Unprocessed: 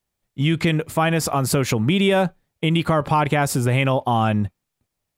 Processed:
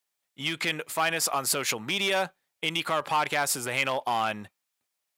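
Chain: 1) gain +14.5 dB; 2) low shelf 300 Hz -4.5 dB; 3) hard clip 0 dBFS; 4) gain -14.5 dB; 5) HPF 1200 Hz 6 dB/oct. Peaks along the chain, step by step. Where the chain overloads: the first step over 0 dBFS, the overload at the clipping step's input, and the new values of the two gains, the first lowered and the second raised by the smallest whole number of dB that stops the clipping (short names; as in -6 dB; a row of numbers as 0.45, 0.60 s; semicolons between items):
+8.5, +6.5, 0.0, -14.5, -12.5 dBFS; step 1, 6.5 dB; step 1 +7.5 dB, step 4 -7.5 dB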